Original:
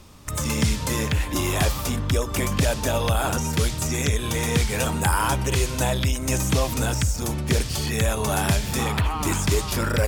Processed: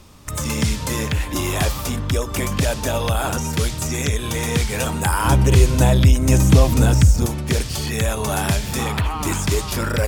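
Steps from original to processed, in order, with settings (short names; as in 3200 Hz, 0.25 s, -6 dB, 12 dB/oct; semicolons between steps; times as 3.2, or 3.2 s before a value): 5.25–7.26 low shelf 450 Hz +10 dB; gain +1.5 dB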